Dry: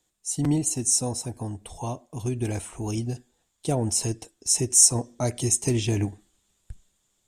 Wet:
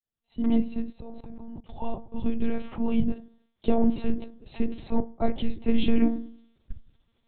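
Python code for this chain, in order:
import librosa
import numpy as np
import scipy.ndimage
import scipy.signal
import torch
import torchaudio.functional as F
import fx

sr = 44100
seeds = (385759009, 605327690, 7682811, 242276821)

y = fx.fade_in_head(x, sr, length_s=1.03)
y = fx.low_shelf(y, sr, hz=400.0, db=6.5)
y = fx.rev_fdn(y, sr, rt60_s=0.48, lf_ratio=1.3, hf_ratio=0.25, size_ms=20.0, drr_db=9.5)
y = fx.lpc_monotone(y, sr, seeds[0], pitch_hz=230.0, order=10)
y = fx.level_steps(y, sr, step_db=19, at=(0.91, 1.8), fade=0.02)
y = fx.low_shelf(y, sr, hz=140.0, db=-10.5, at=(3.12, 3.67))
y = fx.band_widen(y, sr, depth_pct=70, at=(5.0, 5.83))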